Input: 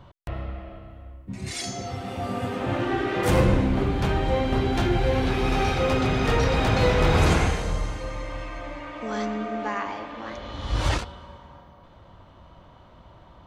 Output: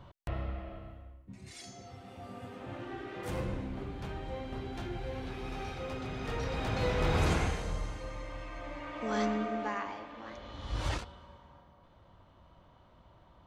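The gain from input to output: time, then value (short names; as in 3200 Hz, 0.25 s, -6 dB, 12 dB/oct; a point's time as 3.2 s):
0.88 s -4 dB
1.44 s -16.5 dB
6.03 s -16.5 dB
7.11 s -9 dB
8.42 s -9 dB
9.25 s -2 dB
10.05 s -10 dB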